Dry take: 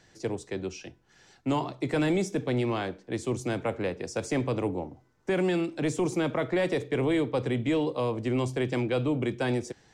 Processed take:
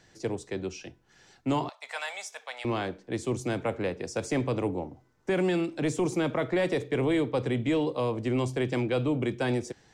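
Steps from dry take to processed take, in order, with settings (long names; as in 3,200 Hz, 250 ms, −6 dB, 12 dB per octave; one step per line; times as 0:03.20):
0:01.69–0:02.65: inverse Chebyshev high-pass filter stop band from 360 Hz, stop band 40 dB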